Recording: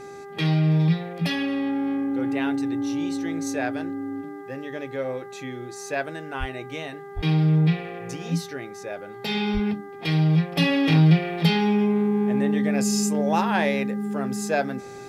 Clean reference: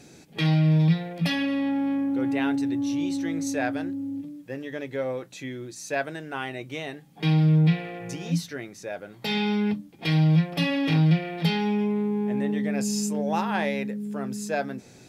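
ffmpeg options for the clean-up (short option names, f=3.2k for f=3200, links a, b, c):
-filter_complex "[0:a]bandreject=f=399.6:t=h:w=4,bandreject=f=799.2:t=h:w=4,bandreject=f=1.1988k:t=h:w=4,bandreject=f=1.5984k:t=h:w=4,bandreject=f=1.998k:t=h:w=4,asplit=3[a][b][c];[a]afade=t=out:st=6.39:d=0.02[d];[b]highpass=f=140:w=0.5412,highpass=f=140:w=1.3066,afade=t=in:st=6.39:d=0.02,afade=t=out:st=6.51:d=0.02[e];[c]afade=t=in:st=6.51:d=0.02[f];[d][e][f]amix=inputs=3:normalize=0,asplit=3[g][h][i];[g]afade=t=out:st=7.15:d=0.02[j];[h]highpass=f=140:w=0.5412,highpass=f=140:w=1.3066,afade=t=in:st=7.15:d=0.02,afade=t=out:st=7.27:d=0.02[k];[i]afade=t=in:st=7.27:d=0.02[l];[j][k][l]amix=inputs=3:normalize=0,asplit=3[m][n][o];[m]afade=t=out:st=9.53:d=0.02[p];[n]highpass=f=140:w=0.5412,highpass=f=140:w=1.3066,afade=t=in:st=9.53:d=0.02,afade=t=out:st=9.65:d=0.02[q];[o]afade=t=in:st=9.65:d=0.02[r];[p][q][r]amix=inputs=3:normalize=0,asetnsamples=n=441:p=0,asendcmd='10.56 volume volume -4dB',volume=0dB"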